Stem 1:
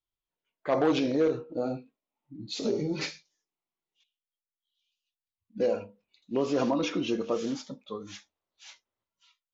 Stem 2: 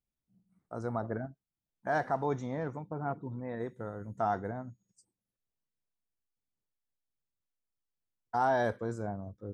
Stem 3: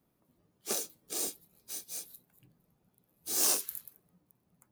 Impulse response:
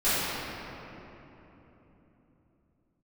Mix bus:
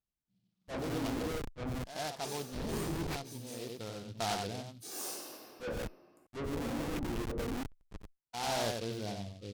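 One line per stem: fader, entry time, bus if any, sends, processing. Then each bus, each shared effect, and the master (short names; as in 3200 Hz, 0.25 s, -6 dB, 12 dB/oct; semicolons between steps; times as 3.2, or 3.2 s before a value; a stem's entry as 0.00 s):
+0.5 dB, 0.00 s, bus A, no send, echo send -5 dB, Schmitt trigger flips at -30 dBFS; auto swell 0.125 s
-3.5 dB, 0.00 s, no bus, no send, echo send -5 dB, noise-modulated delay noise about 3600 Hz, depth 0.11 ms; auto duck -15 dB, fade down 1.00 s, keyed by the first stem
-10.5 dB, 1.55 s, bus A, send -12 dB, no echo send, reverb removal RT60 0.82 s
bus A: 0.0 dB, treble ducked by the level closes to 480 Hz, closed at -30.5 dBFS; limiter -34.5 dBFS, peak gain reduction 8 dB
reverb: on, RT60 3.5 s, pre-delay 3 ms
echo: echo 92 ms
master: one-sided clip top -34 dBFS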